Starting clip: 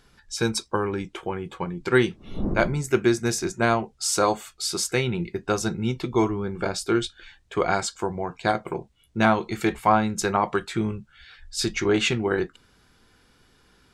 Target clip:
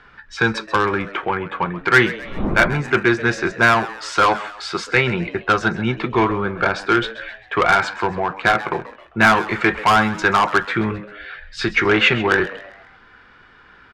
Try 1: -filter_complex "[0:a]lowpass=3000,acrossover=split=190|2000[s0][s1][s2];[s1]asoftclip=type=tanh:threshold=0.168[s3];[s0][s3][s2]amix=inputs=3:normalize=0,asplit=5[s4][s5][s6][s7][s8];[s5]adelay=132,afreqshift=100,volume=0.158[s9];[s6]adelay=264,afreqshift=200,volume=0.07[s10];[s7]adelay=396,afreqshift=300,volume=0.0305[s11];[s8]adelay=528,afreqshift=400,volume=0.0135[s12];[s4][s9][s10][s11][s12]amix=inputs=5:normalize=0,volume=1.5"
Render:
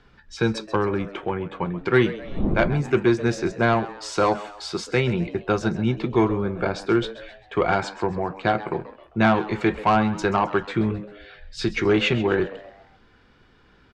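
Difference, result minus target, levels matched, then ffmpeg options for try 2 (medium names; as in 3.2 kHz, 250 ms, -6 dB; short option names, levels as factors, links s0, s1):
2 kHz band -6.0 dB
-filter_complex "[0:a]lowpass=3000,equalizer=f=1500:w=0.63:g=14,acrossover=split=190|2000[s0][s1][s2];[s1]asoftclip=type=tanh:threshold=0.168[s3];[s0][s3][s2]amix=inputs=3:normalize=0,asplit=5[s4][s5][s6][s7][s8];[s5]adelay=132,afreqshift=100,volume=0.158[s9];[s6]adelay=264,afreqshift=200,volume=0.07[s10];[s7]adelay=396,afreqshift=300,volume=0.0305[s11];[s8]adelay=528,afreqshift=400,volume=0.0135[s12];[s4][s9][s10][s11][s12]amix=inputs=5:normalize=0,volume=1.5"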